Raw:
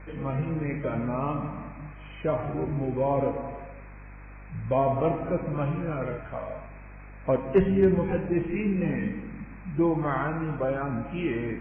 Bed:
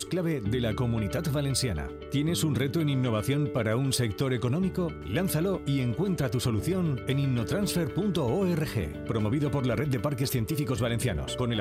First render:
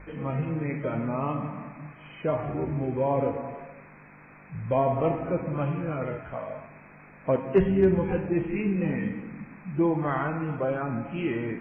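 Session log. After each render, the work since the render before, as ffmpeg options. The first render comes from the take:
-af "bandreject=f=50:t=h:w=4,bandreject=f=100:t=h:w=4"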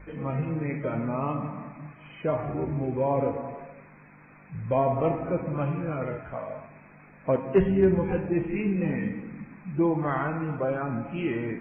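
-af "afftdn=nr=6:nf=-50"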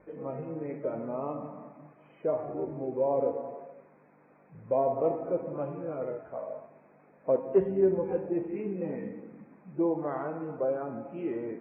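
-af "bandpass=f=500:t=q:w=1.5:csg=0"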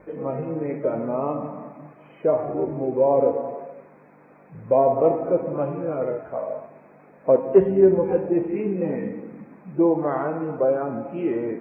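-af "volume=9dB"

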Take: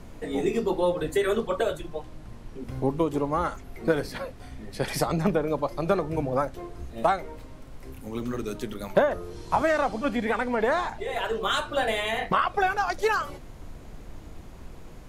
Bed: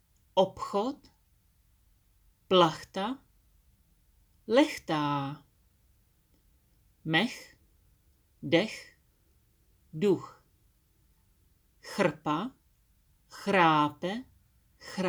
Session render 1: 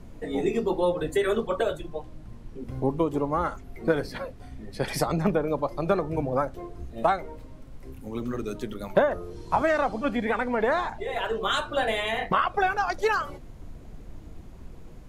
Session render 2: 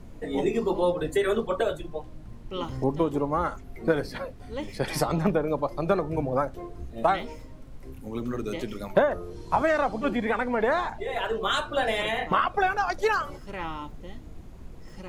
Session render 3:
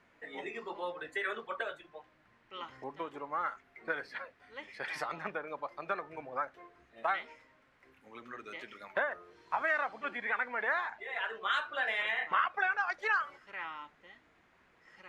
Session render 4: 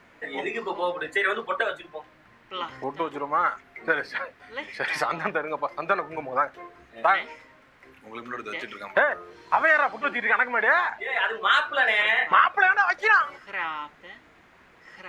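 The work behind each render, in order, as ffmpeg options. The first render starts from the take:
-af "afftdn=nr=6:nf=-44"
-filter_complex "[1:a]volume=-12dB[a];[0:a][a]amix=inputs=2:normalize=0"
-af "bandpass=f=1.8k:t=q:w=1.9:csg=0"
-af "volume=11.5dB"

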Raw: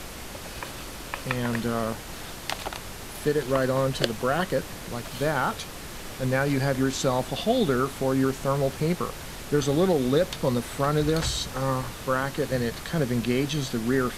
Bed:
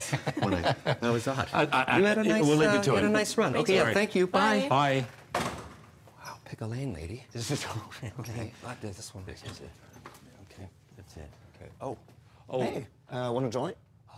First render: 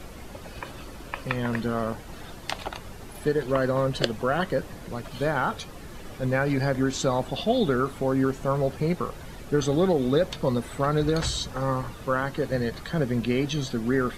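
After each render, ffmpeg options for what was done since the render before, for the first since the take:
-af "afftdn=nr=10:nf=-39"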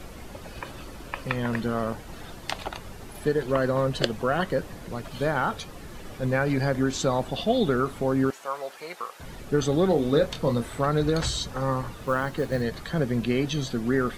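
-filter_complex "[0:a]asettb=1/sr,asplit=3[a][b][c];[a]atrim=end=8.304[d];[b]atrim=start=8.3:end=9.2,asetpts=PTS-STARTPTS,afade=t=in:d=0.004:c=qsin,afade=t=out:st=0.896:d=0.004:c=qsin,highpass=840[e];[c]atrim=start=9.196[f];[d][e]acrossfade=d=0.004:c1=hsin:c2=qsin[g];[g][f]acrossfade=d=0.004:c1=qsin:c2=hsin,asettb=1/sr,asplit=3[h][i][j];[h]atrim=end=9.884[k];[i]atrim=start=9.88:end=10.8,asetpts=PTS-STARTPTS,afade=t=in:d=0.004:c=qsin,afade=t=out:st=0.916:d=0.004:c=qsin,asplit=2[l][m];[m]adelay=26,volume=-8dB[n];[l][n]amix=inputs=2:normalize=0,atrim=end_sample=40572[o];[j]atrim=start=10.796[p];[k][o]acrossfade=d=0.004:c1=hsin:c2=qsin[q];[q][p]acrossfade=d=0.004:c1=qsin:c2=hsin,asettb=1/sr,asplit=3[r][s][t];[r]atrim=end=12.014[u];[s]atrim=start=12.01:end=12.62,asetpts=PTS-STARTPTS,afade=t=in:d=0.004:c=qsin,afade=t=out:st=0.606:d=0.004:c=qsin,acrusher=bits=7:mode=log:mix=0:aa=0.000001[v];[t]atrim=start=12.616[w];[u][v]acrossfade=d=0.004:c1=hsin:c2=qsin[x];[x][w]acrossfade=d=0.004:c1=qsin:c2=hsin"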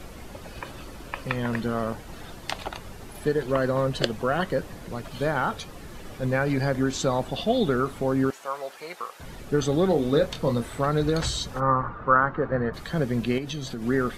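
-filter_complex "[0:a]asplit=3[a][b][c];[a]afade=t=out:st=11.59:d=0.02[d];[b]lowpass=f=1.3k:t=q:w=3.4,afade=t=in:st=11.59:d=0.02,afade=t=out:st=12.73:d=0.02[e];[c]afade=t=in:st=12.73:d=0.02[f];[d][e][f]amix=inputs=3:normalize=0,asettb=1/sr,asplit=3[g][h][i];[g]atrim=end=13.384[j];[h]atrim=start=13.38:end=13.82,asetpts=PTS-STARTPTS,afade=t=in:d=0.004:c=qsin,afade=t=out:st=0.436:d=0.004:c=qsin,acompressor=threshold=-28dB:ratio=6:attack=3.2:release=140:knee=1:detection=peak[k];[i]atrim=start=13.816[l];[j][k]acrossfade=d=0.004:c1=hsin:c2=qsin[m];[m][l]acrossfade=d=0.004:c1=qsin:c2=hsin"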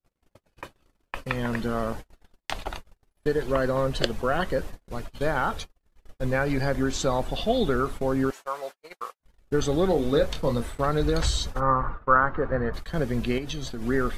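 -af "agate=range=-52dB:threshold=-35dB:ratio=16:detection=peak,asubboost=boost=4.5:cutoff=61"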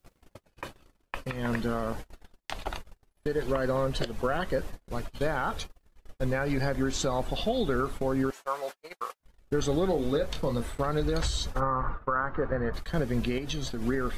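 -af "alimiter=limit=-18dB:level=0:latency=1:release=215,areverse,acompressor=mode=upward:threshold=-37dB:ratio=2.5,areverse"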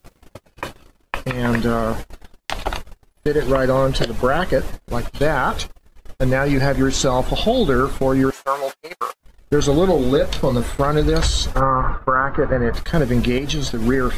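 -af "volume=11dB"

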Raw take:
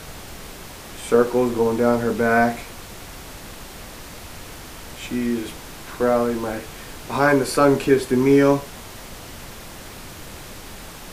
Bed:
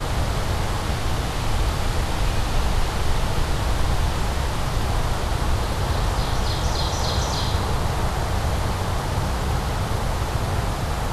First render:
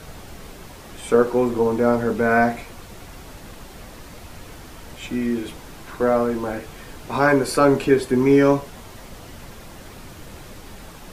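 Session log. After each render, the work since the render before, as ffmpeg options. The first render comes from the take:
-af "afftdn=nr=6:nf=-39"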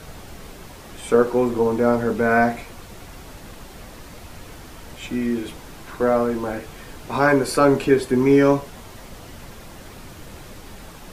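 -af anull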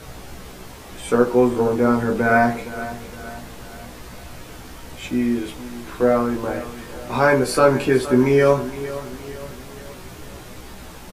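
-filter_complex "[0:a]asplit=2[a][b];[b]adelay=16,volume=-4dB[c];[a][c]amix=inputs=2:normalize=0,aecho=1:1:465|930|1395|1860:0.188|0.0904|0.0434|0.0208"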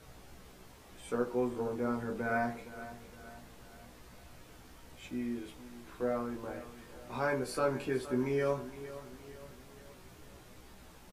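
-af "volume=-16.5dB"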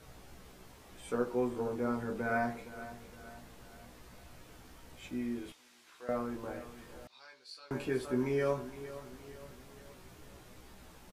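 -filter_complex "[0:a]asettb=1/sr,asplit=3[a][b][c];[a]atrim=end=5.524[d];[b]atrim=start=5.52:end=6.09,asetpts=PTS-STARTPTS,afade=t=in:d=0.004:c=qsin,afade=t=out:st=0.566:d=0.004:c=qsin,bandpass=f=4.6k:t=q:w=0.55[e];[c]atrim=start=6.086[f];[d][e]acrossfade=d=0.004:c1=hsin:c2=qsin[g];[g][f]acrossfade=d=0.004:c1=qsin:c2=hsin,asettb=1/sr,asplit=3[h][i][j];[h]atrim=end=7.074[k];[i]atrim=start=7.07:end=7.71,asetpts=PTS-STARTPTS,afade=t=in:d=0.004:c=qsin,afade=t=out:st=0.636:d=0.004:c=qsin,bandpass=f=4.2k:t=q:w=4[l];[j]atrim=start=7.706[m];[k][l]acrossfade=d=0.004:c1=hsin:c2=qsin[n];[n][m]acrossfade=d=0.004:c1=qsin:c2=hsin"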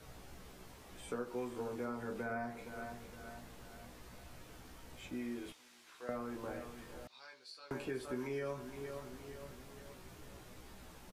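-filter_complex "[0:a]acrossover=split=320|1300[a][b][c];[a]acompressor=threshold=-46dB:ratio=4[d];[b]acompressor=threshold=-42dB:ratio=4[e];[c]acompressor=threshold=-50dB:ratio=4[f];[d][e][f]amix=inputs=3:normalize=0"

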